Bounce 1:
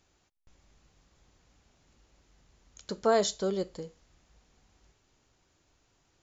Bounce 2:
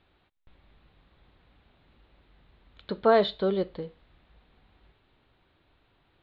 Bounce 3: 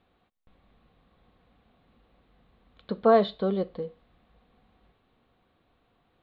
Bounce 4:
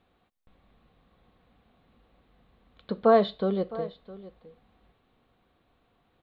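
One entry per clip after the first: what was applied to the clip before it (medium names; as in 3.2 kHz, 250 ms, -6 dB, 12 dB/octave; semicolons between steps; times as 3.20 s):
elliptic low-pass 3.9 kHz, stop band 40 dB; trim +5 dB
small resonant body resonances 220/490/710/1100 Hz, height 9 dB, ringing for 30 ms; trim -5 dB
delay 661 ms -17.5 dB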